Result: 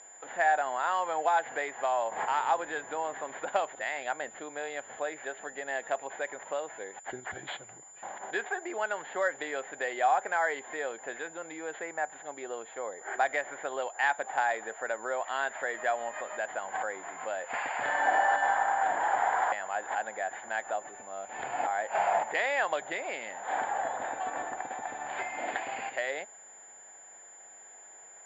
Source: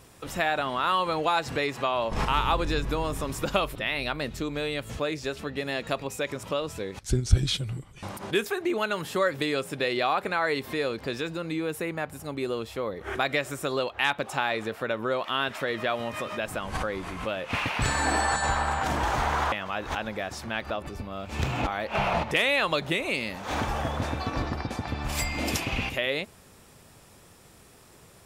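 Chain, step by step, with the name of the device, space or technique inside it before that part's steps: toy sound module (decimation joined by straight lines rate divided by 6×; class-D stage that switches slowly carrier 7.1 kHz; cabinet simulation 710–4200 Hz, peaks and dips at 750 Hz +8 dB, 1.2 kHz -9 dB, 1.7 kHz +5 dB, 2.6 kHz -9 dB, 4 kHz -5 dB)

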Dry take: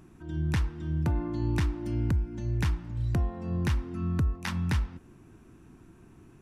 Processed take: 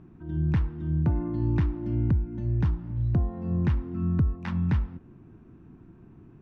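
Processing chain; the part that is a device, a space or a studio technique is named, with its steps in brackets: phone in a pocket (low-pass 4 kHz 12 dB/octave; peaking EQ 160 Hz +5 dB 1.8 oct; treble shelf 2.1 kHz -11 dB); 2.57–3.34 s: dynamic bell 2.2 kHz, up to -6 dB, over -55 dBFS, Q 1.5

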